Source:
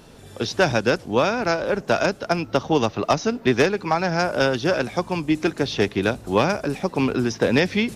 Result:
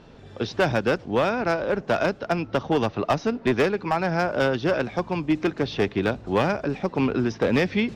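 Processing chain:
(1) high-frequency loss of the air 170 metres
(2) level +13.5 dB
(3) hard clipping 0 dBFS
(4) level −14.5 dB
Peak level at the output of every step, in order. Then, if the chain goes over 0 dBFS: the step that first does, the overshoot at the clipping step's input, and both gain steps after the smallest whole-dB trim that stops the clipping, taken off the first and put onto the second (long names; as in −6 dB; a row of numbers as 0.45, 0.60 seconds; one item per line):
−8.0, +5.5, 0.0, −14.5 dBFS
step 2, 5.5 dB
step 2 +7.5 dB, step 4 −8.5 dB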